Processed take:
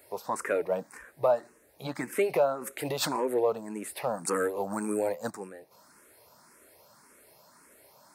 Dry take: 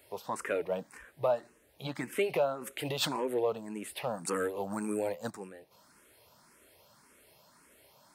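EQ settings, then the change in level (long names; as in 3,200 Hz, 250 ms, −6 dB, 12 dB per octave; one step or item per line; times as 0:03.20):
low-shelf EQ 160 Hz −8.5 dB
parametric band 3,100 Hz −11 dB 0.62 octaves
+5.0 dB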